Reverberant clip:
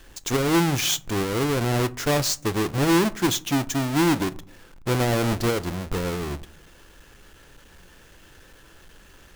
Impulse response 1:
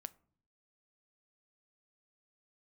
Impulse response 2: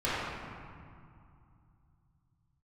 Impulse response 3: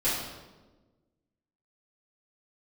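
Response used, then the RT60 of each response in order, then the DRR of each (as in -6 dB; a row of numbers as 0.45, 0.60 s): 1; 0.55, 2.4, 1.2 s; 14.5, -12.0, -13.5 dB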